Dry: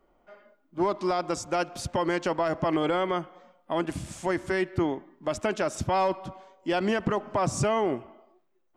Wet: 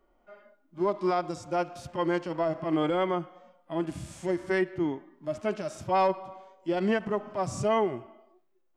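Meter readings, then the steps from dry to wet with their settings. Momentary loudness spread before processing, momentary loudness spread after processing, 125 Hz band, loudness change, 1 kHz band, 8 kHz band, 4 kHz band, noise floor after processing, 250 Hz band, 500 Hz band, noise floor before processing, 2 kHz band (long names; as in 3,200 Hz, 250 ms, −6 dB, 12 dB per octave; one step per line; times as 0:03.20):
8 LU, 10 LU, −3.5 dB, −1.5 dB, −1.5 dB, −8.0 dB, −5.0 dB, −68 dBFS, −1.0 dB, −1.0 dB, −68 dBFS, −3.0 dB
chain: harmonic and percussive parts rebalanced percussive −17 dB
level +1 dB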